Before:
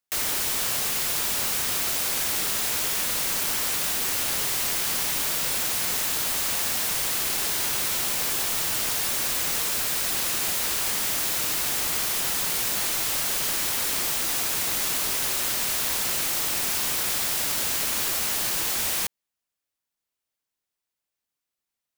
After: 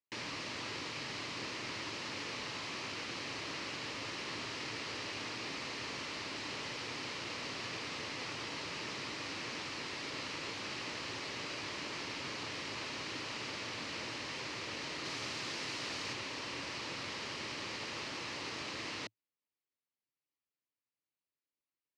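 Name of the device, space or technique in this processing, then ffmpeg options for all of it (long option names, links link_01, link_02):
ring modulator pedal into a guitar cabinet: -filter_complex "[0:a]asettb=1/sr,asplit=3[link_01][link_02][link_03];[link_01]atrim=end=15.054[link_04];[link_02]atrim=start=15.05:end=16.13,asetpts=PTS-STARTPTS,afade=type=in:duration=0.004:curve=qsin,afade=type=out:start_time=1.076:duration=0.004:curve=qsin,highshelf=frequency=4800:gain=5.5[link_05];[link_03]atrim=start=16.126[link_06];[link_04][link_05]acrossfade=duration=0.004:curve1=hsin:curve2=qsin[link_07];[link_07][link_06]acrossfade=duration=0.004:curve1=qsin:curve2=hsin,aeval=exprs='val(0)*sgn(sin(2*PI*270*n/s))':channel_layout=same,highpass=110,equalizer=frequency=110:width_type=q:width=4:gain=6,equalizer=frequency=190:width_type=q:width=4:gain=-3,equalizer=frequency=300:width_type=q:width=4:gain=5,equalizer=frequency=730:width_type=q:width=4:gain=-7,equalizer=frequency=1500:width_type=q:width=4:gain=-6,equalizer=frequency=3500:width_type=q:width=4:gain=-7,lowpass=frequency=4500:width=0.5412,lowpass=frequency=4500:width=1.3066,volume=-7dB"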